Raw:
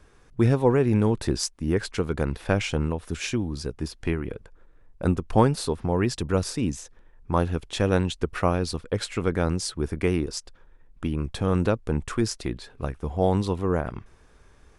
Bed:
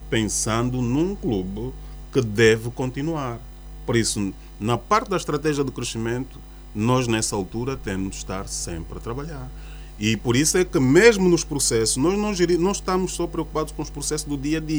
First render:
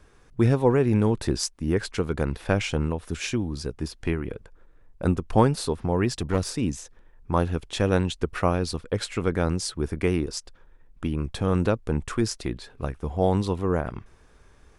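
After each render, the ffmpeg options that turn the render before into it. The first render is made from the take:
-filter_complex "[0:a]asplit=3[a][b][c];[a]afade=t=out:st=6.07:d=0.02[d];[b]aeval=exprs='clip(val(0),-1,0.0562)':c=same,afade=t=in:st=6.07:d=0.02,afade=t=out:st=6.48:d=0.02[e];[c]afade=t=in:st=6.48:d=0.02[f];[d][e][f]amix=inputs=3:normalize=0"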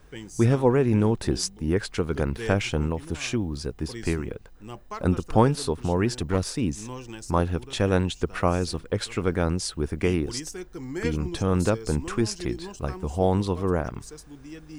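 -filter_complex "[1:a]volume=-18dB[a];[0:a][a]amix=inputs=2:normalize=0"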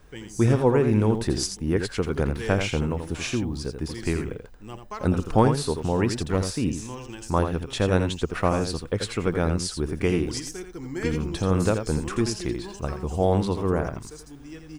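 -af "aecho=1:1:84:0.422"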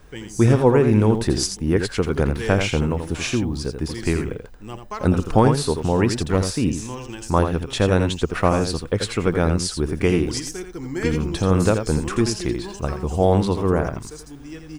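-af "volume=4.5dB,alimiter=limit=-3dB:level=0:latency=1"

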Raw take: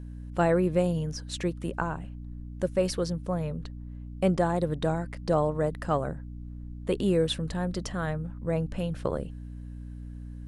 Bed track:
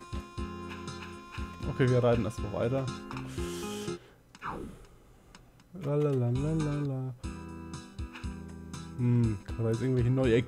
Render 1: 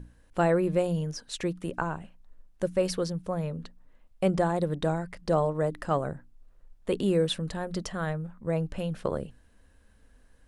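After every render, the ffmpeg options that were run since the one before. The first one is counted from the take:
-af "bandreject=f=60:t=h:w=6,bandreject=f=120:t=h:w=6,bandreject=f=180:t=h:w=6,bandreject=f=240:t=h:w=6,bandreject=f=300:t=h:w=6"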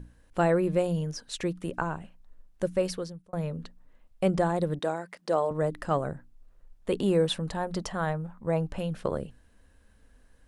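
-filter_complex "[0:a]asettb=1/sr,asplit=3[a][b][c];[a]atrim=end=4.794[d];[b]atrim=start=4.79:end=5.51,asetpts=PTS-STARTPTS,afade=t=in:d=0.004:c=qsin,afade=t=out:st=0.716:d=0.004:c=qsin,highpass=320[e];[c]atrim=start=5.506[f];[d][e]acrossfade=d=0.004:c1=hsin:c2=qsin[g];[g][f]acrossfade=d=0.004:c1=qsin:c2=hsin,asettb=1/sr,asplit=3[h][i][j];[h]atrim=end=6.994[k];[i]atrim=start=6.99:end=8.79,asetpts=PTS-STARTPTS,afade=t=in:d=0.004:c=qsin,afade=t=out:st=1.796:d=0.004:c=qsin,equalizer=f=870:t=o:w=0.77:g=7[l];[j]atrim=start=8.786[m];[k][l]acrossfade=d=0.004:c1=hsin:c2=qsin[n];[n][m]acrossfade=d=0.004:c1=qsin:c2=hsin,asplit=2[o][p];[o]atrim=end=3.33,asetpts=PTS-STARTPTS,afade=t=out:st=2.75:d=0.58[q];[p]atrim=start=3.33,asetpts=PTS-STARTPTS,afade=t=in:d=0.004:c=hsin[r];[q][r]concat=n=2:v=0:a=1"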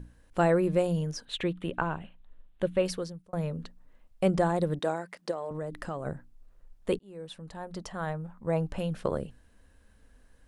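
-filter_complex "[0:a]asettb=1/sr,asplit=3[a][b][c];[a]atrim=end=1.254[d];[b]atrim=start=1.25:end=2.86,asetpts=PTS-STARTPTS,afade=t=in:d=0.004:c=qsin,afade=t=out:st=1.606:d=0.004:c=qsin,highshelf=f=4.3k:t=q:w=3:g=-8[e];[c]atrim=start=2.856[f];[d][e]acrossfade=d=0.004:c1=hsin:c2=qsin[g];[g][f]acrossfade=d=0.004:c1=qsin:c2=hsin,asplit=3[h][i][j];[h]afade=t=out:st=5.3:d=0.02[k];[i]acompressor=threshold=-31dB:ratio=6:attack=3.2:release=140:knee=1:detection=peak,afade=t=in:st=5.3:d=0.02,afade=t=out:st=6.05:d=0.02[l];[j]afade=t=in:st=6.05:d=0.02[m];[k][l][m]amix=inputs=3:normalize=0,asplit=2[n][o];[n]atrim=end=6.99,asetpts=PTS-STARTPTS,afade=t=out:st=6.986:d=0.004:c=hsin[p];[o]atrim=start=6.99,asetpts=PTS-STARTPTS,afade=t=in:d=1.74[q];[p][q]concat=n=2:v=0:a=1"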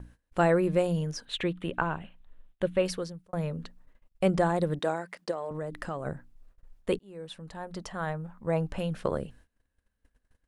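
-af "agate=range=-21dB:threshold=-53dB:ratio=16:detection=peak,equalizer=f=1.9k:t=o:w=1.8:g=2.5"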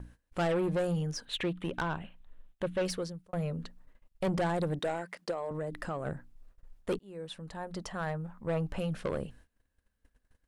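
-af "asoftclip=type=tanh:threshold=-25.5dB"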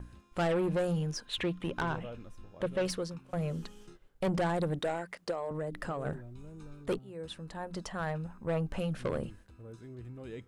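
-filter_complex "[1:a]volume=-18.5dB[a];[0:a][a]amix=inputs=2:normalize=0"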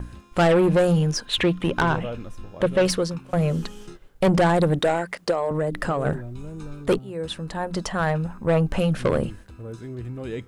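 -af "volume=12dB"

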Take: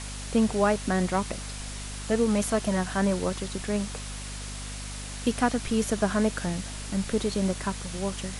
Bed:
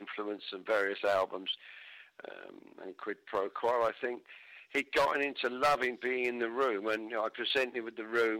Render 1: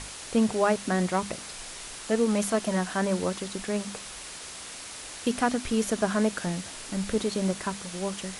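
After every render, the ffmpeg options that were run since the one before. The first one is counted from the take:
-af "bandreject=f=50:t=h:w=6,bandreject=f=100:t=h:w=6,bandreject=f=150:t=h:w=6,bandreject=f=200:t=h:w=6,bandreject=f=250:t=h:w=6"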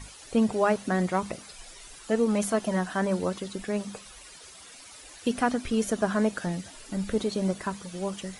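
-af "afftdn=nr=12:nf=-41"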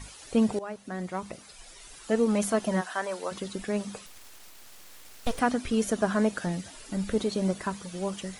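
-filter_complex "[0:a]asplit=3[a][b][c];[a]afade=t=out:st=2.8:d=0.02[d];[b]highpass=580,afade=t=in:st=2.8:d=0.02,afade=t=out:st=3.31:d=0.02[e];[c]afade=t=in:st=3.31:d=0.02[f];[d][e][f]amix=inputs=3:normalize=0,asettb=1/sr,asplit=3[g][h][i];[g]atrim=end=4.064[j];[h]atrim=start=4.06:end=5.39,asetpts=PTS-STARTPTS,afade=t=in:d=0.004:c=qsin,afade=t=out:st=1.326:d=0.004:c=qsin,aeval=exprs='abs(val(0))':c=same[k];[i]atrim=start=5.386[l];[j][k]acrossfade=d=0.004:c1=hsin:c2=qsin[m];[m][l]acrossfade=d=0.004:c1=qsin:c2=hsin,asplit=2[n][o];[n]atrim=end=0.59,asetpts=PTS-STARTPTS,afade=t=out:st=0.586:d=0.004:c=hsin:silence=0.141254[p];[o]atrim=start=0.59,asetpts=PTS-STARTPTS,afade=t=in:d=1.56:silence=0.141254[q];[p][q]concat=n=2:v=0:a=1"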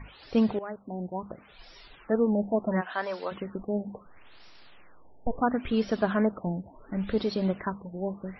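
-af "afftfilt=real='re*lt(b*sr/1024,910*pow(5800/910,0.5+0.5*sin(2*PI*0.72*pts/sr)))':imag='im*lt(b*sr/1024,910*pow(5800/910,0.5+0.5*sin(2*PI*0.72*pts/sr)))':win_size=1024:overlap=0.75"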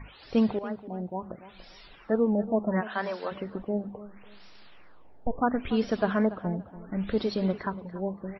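-filter_complex "[0:a]asplit=2[a][b];[b]adelay=286,lowpass=f=3.8k:p=1,volume=-15.5dB,asplit=2[c][d];[d]adelay=286,lowpass=f=3.8k:p=1,volume=0.25,asplit=2[e][f];[f]adelay=286,lowpass=f=3.8k:p=1,volume=0.25[g];[a][c][e][g]amix=inputs=4:normalize=0"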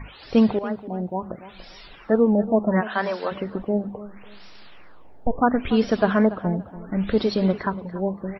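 -af "volume=6.5dB"

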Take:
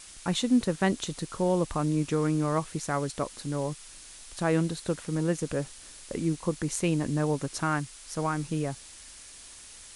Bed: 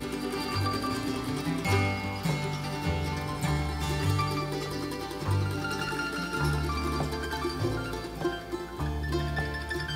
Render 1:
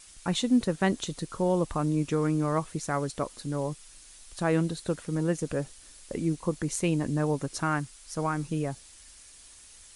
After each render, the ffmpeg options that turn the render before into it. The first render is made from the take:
-af "afftdn=nr=6:nf=-48"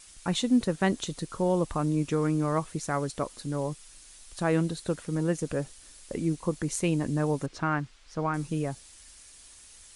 -filter_complex "[0:a]asettb=1/sr,asplit=3[a][b][c];[a]atrim=end=7.464[d];[b]atrim=start=7.46:end=8.34,asetpts=PTS-STARTPTS,afade=t=in:d=0.004:c=qsin,afade=t=out:st=0.876:d=0.004:c=qsin,lowpass=3.7k[e];[c]atrim=start=8.336[f];[d][e]acrossfade=d=0.004:c1=hsin:c2=qsin[g];[g][f]acrossfade=d=0.004:c1=qsin:c2=hsin"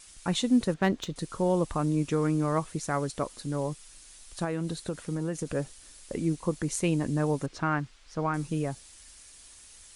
-filter_complex "[0:a]asettb=1/sr,asplit=3[a][b][c];[a]atrim=end=0.744[d];[b]atrim=start=0.74:end=1.16,asetpts=PTS-STARTPTS,afade=t=in:d=0.004:c=qsin,afade=t=out:st=0.416:d=0.004:c=qsin,adynamicsmooth=sensitivity=4.5:basefreq=3.2k[e];[c]atrim=start=1.156[f];[d][e]acrossfade=d=0.004:c1=hsin:c2=qsin[g];[g][f]acrossfade=d=0.004:c1=qsin:c2=hsin,asettb=1/sr,asplit=3[h][i][j];[h]atrim=end=4.444[k];[i]atrim=start=4.44:end=5.55,asetpts=PTS-STARTPTS,afade=t=in:d=0.004:c=qsin,afade=t=out:st=1.106:d=0.004:c=qsin,acompressor=threshold=-26dB:ratio=6:attack=3.2:release=140:knee=1:detection=peak[l];[j]atrim=start=5.546[m];[k][l]acrossfade=d=0.004:c1=hsin:c2=qsin[n];[n][m]acrossfade=d=0.004:c1=qsin:c2=hsin"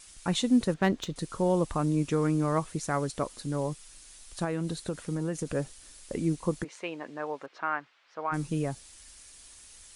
-filter_complex "[0:a]asplit=3[a][b][c];[a]afade=t=out:st=6.63:d=0.02[d];[b]highpass=620,lowpass=2.7k,afade=t=in:st=6.63:d=0.02,afade=t=out:st=8.31:d=0.02[e];[c]afade=t=in:st=8.31:d=0.02[f];[d][e][f]amix=inputs=3:normalize=0"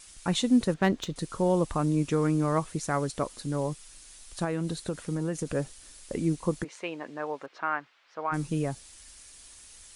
-af "volume=1dB"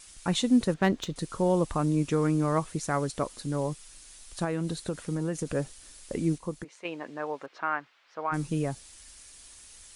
-filter_complex "[0:a]asplit=3[a][b][c];[a]atrim=end=6.382[d];[b]atrim=start=6.378:end=6.852,asetpts=PTS-STARTPTS,volume=-6.5dB[e];[c]atrim=start=6.848[f];[d][e]acrossfade=d=0.004:c1=hsin:c2=hsin[g];[g][f]acrossfade=d=0.004:c1=hsin:c2=hsin"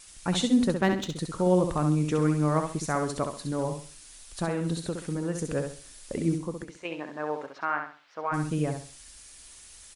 -af "aecho=1:1:66|132|198|264:0.501|0.155|0.0482|0.0149"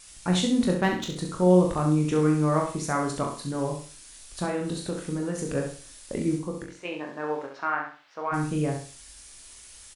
-af "aecho=1:1:22|39:0.501|0.447"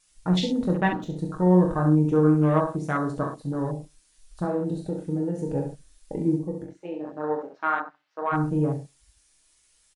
-af "afwtdn=0.0224,aecho=1:1:6.4:0.47"

